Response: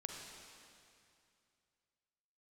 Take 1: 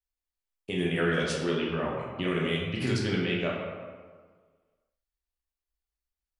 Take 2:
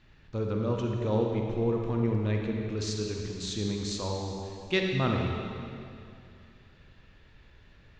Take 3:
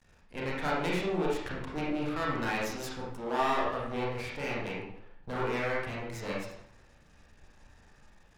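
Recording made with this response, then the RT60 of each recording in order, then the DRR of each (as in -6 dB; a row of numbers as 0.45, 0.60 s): 2; 1.6, 2.5, 0.70 s; -3.5, 1.0, -5.5 dB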